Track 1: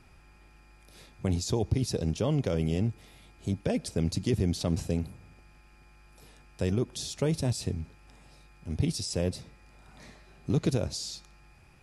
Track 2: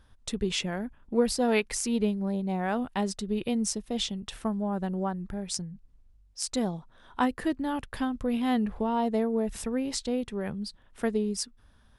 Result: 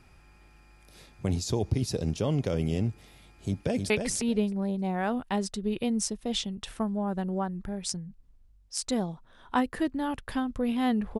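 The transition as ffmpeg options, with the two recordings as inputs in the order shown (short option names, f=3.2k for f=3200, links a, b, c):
-filter_complex "[0:a]apad=whole_dur=11.19,atrim=end=11.19,atrim=end=3.902[a];[1:a]atrim=start=1.548:end=8.84[b];[a][b]acrossfade=d=0.004:c1=hsin:c2=hsin,asplit=2[c][d];[d]afade=t=in:st=3.32:d=0.01,afade=t=out:st=3.9:d=0.01,aecho=0:1:310|620|930:0.595662|0.0893493|0.0134024[e];[c][e]amix=inputs=2:normalize=0"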